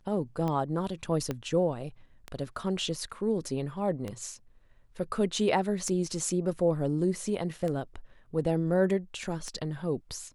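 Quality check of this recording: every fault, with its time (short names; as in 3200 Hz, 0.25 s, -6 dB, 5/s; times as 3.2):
tick 33 1/3 rpm -21 dBFS
1.31 pop -18 dBFS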